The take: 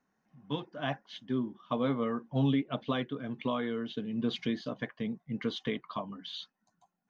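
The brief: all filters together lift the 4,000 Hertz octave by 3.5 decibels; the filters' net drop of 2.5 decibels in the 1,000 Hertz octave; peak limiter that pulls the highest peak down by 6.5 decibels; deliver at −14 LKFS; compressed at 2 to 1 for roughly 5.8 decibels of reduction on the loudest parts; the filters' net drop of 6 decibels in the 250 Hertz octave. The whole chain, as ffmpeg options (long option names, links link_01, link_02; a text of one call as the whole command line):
ffmpeg -i in.wav -af "equalizer=frequency=250:width_type=o:gain=-6.5,equalizer=frequency=1000:width_type=o:gain=-3,equalizer=frequency=4000:width_type=o:gain=4.5,acompressor=threshold=-37dB:ratio=2,volume=28.5dB,alimiter=limit=-2dB:level=0:latency=1" out.wav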